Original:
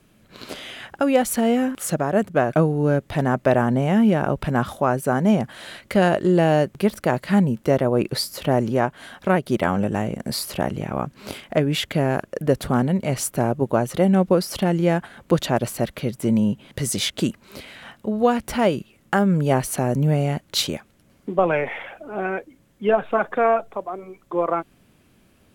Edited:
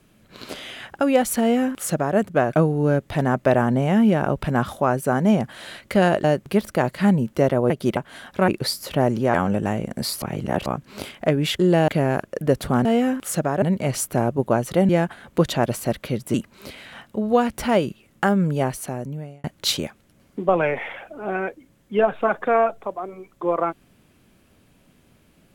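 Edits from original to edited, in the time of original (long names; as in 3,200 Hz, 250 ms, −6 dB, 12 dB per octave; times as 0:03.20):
0:01.40–0:02.17: duplicate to 0:12.85
0:06.24–0:06.53: move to 0:11.88
0:07.99–0:08.85: swap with 0:09.36–0:09.63
0:10.51–0:10.95: reverse
0:14.12–0:14.82: remove
0:16.27–0:17.24: remove
0:19.15–0:20.34: fade out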